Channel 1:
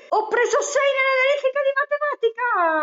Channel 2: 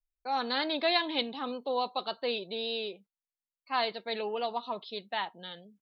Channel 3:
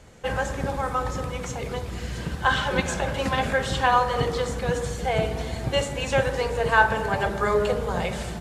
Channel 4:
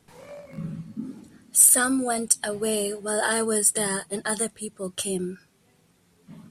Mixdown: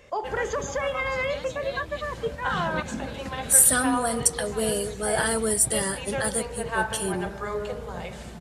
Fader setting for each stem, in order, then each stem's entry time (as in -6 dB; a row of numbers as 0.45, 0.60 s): -9.5, -13.0, -8.5, -1.0 dB; 0.00, 0.80, 0.00, 1.95 s